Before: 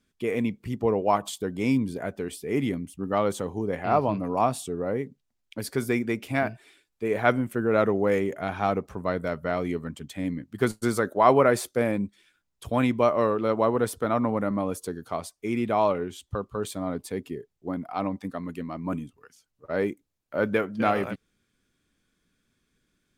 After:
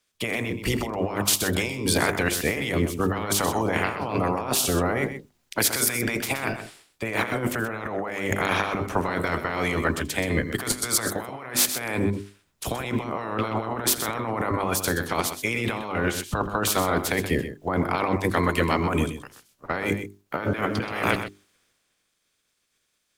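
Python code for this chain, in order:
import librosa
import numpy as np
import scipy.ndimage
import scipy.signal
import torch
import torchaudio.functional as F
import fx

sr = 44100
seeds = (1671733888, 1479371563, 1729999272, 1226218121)

y = fx.spec_clip(x, sr, under_db=20)
y = fx.hum_notches(y, sr, base_hz=50, count=8)
y = fx.over_compress(y, sr, threshold_db=-33.0, ratio=-1.0)
y = fx.echo_multitap(y, sr, ms=(84, 127), db=(-19.0, -9.5))
y = fx.band_widen(y, sr, depth_pct=40)
y = y * librosa.db_to_amplitude(6.5)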